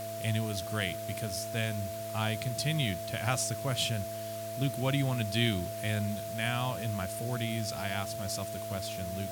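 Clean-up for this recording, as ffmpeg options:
ffmpeg -i in.wav -af "bandreject=frequency=107.7:width_type=h:width=4,bandreject=frequency=215.4:width_type=h:width=4,bandreject=frequency=323.1:width_type=h:width=4,bandreject=frequency=430.8:width_type=h:width=4,bandreject=frequency=538.5:width_type=h:width=4,bandreject=frequency=670:width=30,afwtdn=0.0045" out.wav

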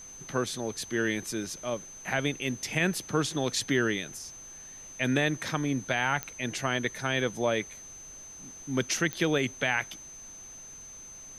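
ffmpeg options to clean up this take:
ffmpeg -i in.wav -af "adeclick=threshold=4,bandreject=frequency=6200:width=30,afftdn=noise_reduction=29:noise_floor=-47" out.wav

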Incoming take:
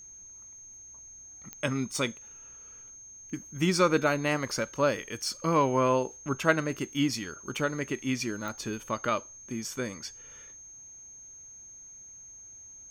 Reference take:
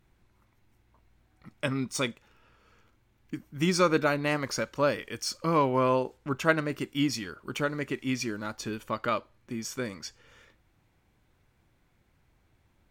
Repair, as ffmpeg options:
ffmpeg -i in.wav -af "adeclick=threshold=4,bandreject=frequency=6400:width=30" out.wav

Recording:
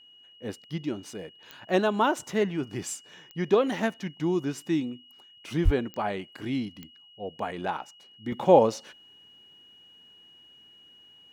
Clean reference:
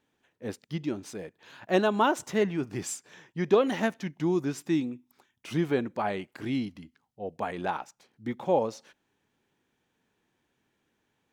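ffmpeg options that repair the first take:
ffmpeg -i in.wav -filter_complex "[0:a]adeclick=threshold=4,bandreject=frequency=2900:width=30,asplit=3[link_01][link_02][link_03];[link_01]afade=type=out:start_time=5.64:duration=0.02[link_04];[link_02]highpass=frequency=140:width=0.5412,highpass=frequency=140:width=1.3066,afade=type=in:start_time=5.64:duration=0.02,afade=type=out:start_time=5.76:duration=0.02[link_05];[link_03]afade=type=in:start_time=5.76:duration=0.02[link_06];[link_04][link_05][link_06]amix=inputs=3:normalize=0,asetnsamples=nb_out_samples=441:pad=0,asendcmd='8.32 volume volume -7.5dB',volume=0dB" out.wav

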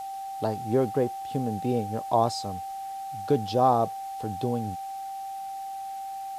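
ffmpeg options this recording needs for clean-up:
ffmpeg -i in.wav -af "bandreject=frequency=780:width=30,afwtdn=0.0025" out.wav

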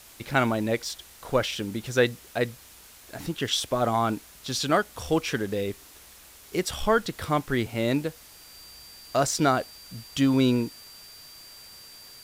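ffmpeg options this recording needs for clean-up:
ffmpeg -i in.wav -af "bandreject=frequency=4700:width=30,afwtdn=0.0035" out.wav

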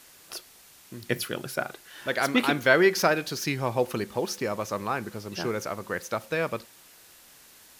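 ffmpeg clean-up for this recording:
ffmpeg -i in.wav -af "afwtdn=0.0025" out.wav

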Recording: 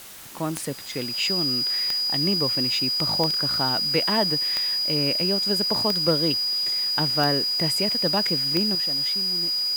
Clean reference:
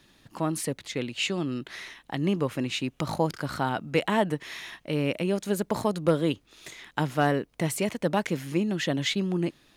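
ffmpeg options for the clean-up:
ffmpeg -i in.wav -af "adeclick=threshold=4,bandreject=frequency=4900:width=30,afwtdn=0.0079,asetnsamples=nb_out_samples=441:pad=0,asendcmd='8.75 volume volume 11.5dB',volume=0dB" out.wav

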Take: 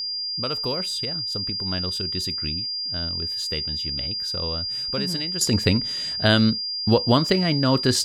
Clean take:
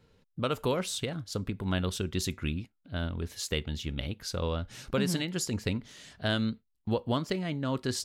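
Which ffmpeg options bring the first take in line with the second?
ffmpeg -i in.wav -af "bandreject=frequency=4800:width=30,asetnsamples=nb_out_samples=441:pad=0,asendcmd='5.41 volume volume -11dB',volume=0dB" out.wav

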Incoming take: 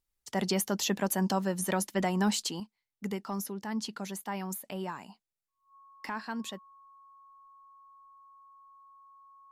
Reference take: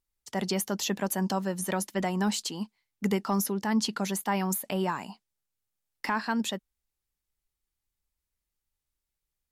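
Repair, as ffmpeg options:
ffmpeg -i in.wav -af "bandreject=frequency=1100:width=30,asetnsamples=nb_out_samples=441:pad=0,asendcmd='2.6 volume volume 8dB',volume=0dB" out.wav

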